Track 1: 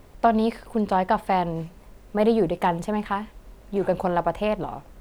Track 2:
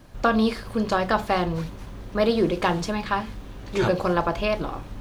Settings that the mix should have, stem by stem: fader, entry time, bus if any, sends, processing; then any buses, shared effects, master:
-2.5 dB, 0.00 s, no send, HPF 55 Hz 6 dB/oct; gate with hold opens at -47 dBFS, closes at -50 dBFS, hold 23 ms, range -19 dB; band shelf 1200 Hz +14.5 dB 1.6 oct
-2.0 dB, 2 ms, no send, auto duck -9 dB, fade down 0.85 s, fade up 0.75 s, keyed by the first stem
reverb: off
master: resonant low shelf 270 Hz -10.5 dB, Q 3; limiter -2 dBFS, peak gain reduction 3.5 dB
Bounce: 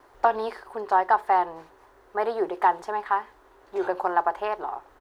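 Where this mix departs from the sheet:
stem 1 -2.5 dB -> -11.5 dB; stem 2 -2.0 dB -> -9.5 dB

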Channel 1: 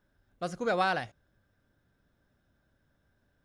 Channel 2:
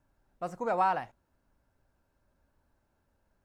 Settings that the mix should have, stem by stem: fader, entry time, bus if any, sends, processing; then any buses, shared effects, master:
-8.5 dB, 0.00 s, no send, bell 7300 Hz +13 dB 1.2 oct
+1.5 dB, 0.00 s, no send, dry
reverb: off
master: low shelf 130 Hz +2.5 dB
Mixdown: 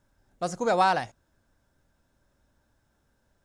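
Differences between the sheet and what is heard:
stem 1 -8.5 dB -> -2.5 dB; master: missing low shelf 130 Hz +2.5 dB

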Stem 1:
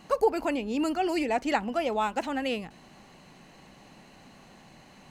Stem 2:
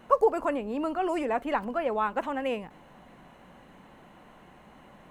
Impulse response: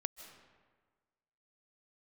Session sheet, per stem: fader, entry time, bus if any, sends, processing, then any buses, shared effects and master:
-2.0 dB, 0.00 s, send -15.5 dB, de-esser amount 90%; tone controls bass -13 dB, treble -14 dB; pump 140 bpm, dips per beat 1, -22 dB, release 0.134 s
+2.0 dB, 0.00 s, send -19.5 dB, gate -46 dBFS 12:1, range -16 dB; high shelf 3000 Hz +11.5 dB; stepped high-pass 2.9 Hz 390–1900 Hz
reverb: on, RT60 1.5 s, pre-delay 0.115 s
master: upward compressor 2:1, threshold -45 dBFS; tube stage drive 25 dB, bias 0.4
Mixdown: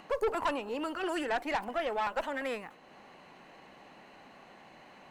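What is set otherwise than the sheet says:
stem 1: missing pump 140 bpm, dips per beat 1, -22 dB, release 0.134 s; stem 2 +2.0 dB -> -7.5 dB

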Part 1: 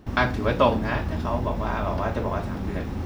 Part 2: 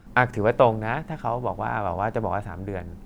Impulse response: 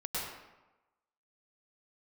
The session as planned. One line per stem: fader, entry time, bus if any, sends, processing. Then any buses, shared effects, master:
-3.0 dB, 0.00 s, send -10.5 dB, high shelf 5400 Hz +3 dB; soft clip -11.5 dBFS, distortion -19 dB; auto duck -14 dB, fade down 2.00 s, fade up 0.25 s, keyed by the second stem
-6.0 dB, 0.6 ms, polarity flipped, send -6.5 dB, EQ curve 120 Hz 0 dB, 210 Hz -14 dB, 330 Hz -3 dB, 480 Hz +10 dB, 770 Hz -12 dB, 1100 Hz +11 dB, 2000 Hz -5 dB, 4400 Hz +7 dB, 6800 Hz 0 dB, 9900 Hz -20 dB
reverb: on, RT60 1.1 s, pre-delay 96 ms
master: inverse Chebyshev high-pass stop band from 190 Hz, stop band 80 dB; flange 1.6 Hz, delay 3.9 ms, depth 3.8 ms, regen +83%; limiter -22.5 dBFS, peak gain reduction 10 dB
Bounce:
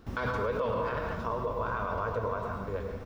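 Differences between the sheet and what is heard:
stem 2: polarity flipped; master: missing inverse Chebyshev high-pass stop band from 190 Hz, stop band 80 dB

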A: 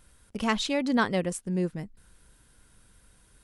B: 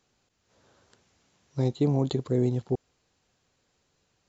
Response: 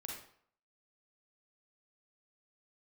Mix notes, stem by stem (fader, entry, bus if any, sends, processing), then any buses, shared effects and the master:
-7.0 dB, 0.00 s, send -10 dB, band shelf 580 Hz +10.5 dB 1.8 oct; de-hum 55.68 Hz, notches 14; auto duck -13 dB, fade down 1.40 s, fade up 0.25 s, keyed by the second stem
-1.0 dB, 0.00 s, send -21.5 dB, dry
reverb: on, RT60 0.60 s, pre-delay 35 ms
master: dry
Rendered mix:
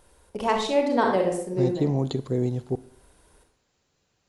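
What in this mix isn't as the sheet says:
stem A: send -10 dB -> -3.5 dB; reverb return +9.5 dB

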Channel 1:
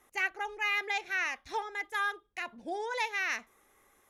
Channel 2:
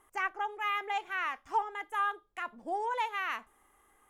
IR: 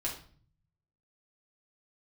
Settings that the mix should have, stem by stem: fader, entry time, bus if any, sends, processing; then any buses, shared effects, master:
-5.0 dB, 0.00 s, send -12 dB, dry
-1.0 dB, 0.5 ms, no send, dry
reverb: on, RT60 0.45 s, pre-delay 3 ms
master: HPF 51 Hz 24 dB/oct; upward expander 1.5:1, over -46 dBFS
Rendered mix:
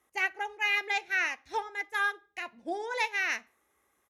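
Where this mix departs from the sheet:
stem 1 -5.0 dB -> +1.5 dB; stem 2 -1.0 dB -> -7.5 dB

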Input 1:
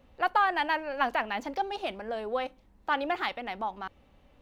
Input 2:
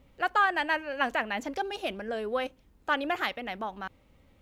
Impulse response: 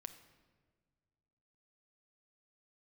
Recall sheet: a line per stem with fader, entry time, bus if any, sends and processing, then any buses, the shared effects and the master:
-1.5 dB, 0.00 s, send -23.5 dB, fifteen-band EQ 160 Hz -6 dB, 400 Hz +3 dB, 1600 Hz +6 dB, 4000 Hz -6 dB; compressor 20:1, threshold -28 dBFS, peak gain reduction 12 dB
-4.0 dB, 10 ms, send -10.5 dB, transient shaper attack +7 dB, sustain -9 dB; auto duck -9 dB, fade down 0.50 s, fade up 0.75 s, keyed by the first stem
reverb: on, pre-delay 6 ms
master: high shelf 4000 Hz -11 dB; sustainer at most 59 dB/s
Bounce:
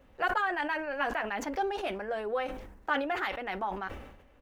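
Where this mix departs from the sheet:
stem 2: send off; master: missing high shelf 4000 Hz -11 dB

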